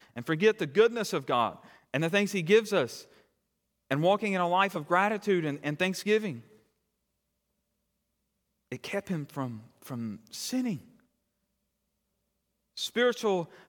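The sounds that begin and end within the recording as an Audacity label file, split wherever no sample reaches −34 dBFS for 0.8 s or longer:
3.910000	6.360000	sound
8.720000	10.760000	sound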